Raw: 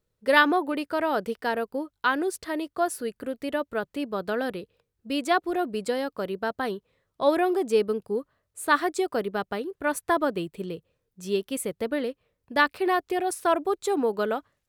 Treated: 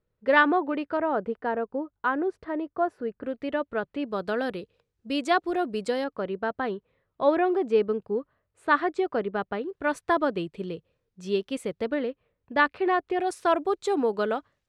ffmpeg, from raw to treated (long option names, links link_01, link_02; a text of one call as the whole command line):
ffmpeg -i in.wav -af "asetnsamples=nb_out_samples=441:pad=0,asendcmd='0.97 lowpass f 1400;3.23 lowpass f 3000;4.08 lowpass f 6900;6.04 lowpass f 2600;9.69 lowpass f 5000;11.94 lowpass f 2800;13.2 lowpass f 6100',lowpass=2400" out.wav